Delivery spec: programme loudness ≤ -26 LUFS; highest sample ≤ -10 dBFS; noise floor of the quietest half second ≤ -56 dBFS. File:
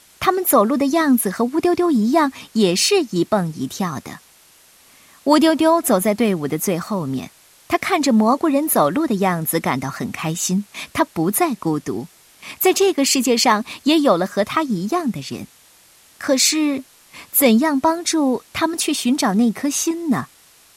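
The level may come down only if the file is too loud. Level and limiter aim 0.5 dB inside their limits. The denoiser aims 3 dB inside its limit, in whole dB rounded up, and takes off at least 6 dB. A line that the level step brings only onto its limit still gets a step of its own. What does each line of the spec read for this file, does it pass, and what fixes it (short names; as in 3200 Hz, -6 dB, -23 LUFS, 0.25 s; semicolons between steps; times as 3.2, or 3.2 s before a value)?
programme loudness -18.0 LUFS: fail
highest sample -2.0 dBFS: fail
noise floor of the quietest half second -51 dBFS: fail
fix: gain -8.5 dB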